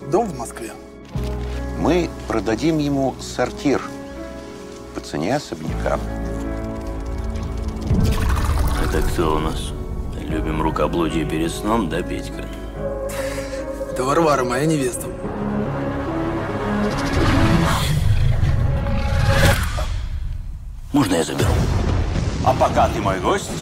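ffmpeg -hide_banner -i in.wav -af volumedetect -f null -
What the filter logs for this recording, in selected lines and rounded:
mean_volume: -20.3 dB
max_volume: -2.6 dB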